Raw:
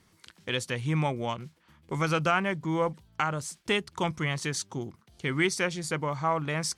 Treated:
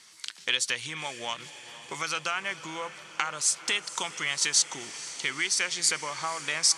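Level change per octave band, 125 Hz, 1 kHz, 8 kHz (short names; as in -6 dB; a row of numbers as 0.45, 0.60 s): -18.5, -4.0, +11.5 dB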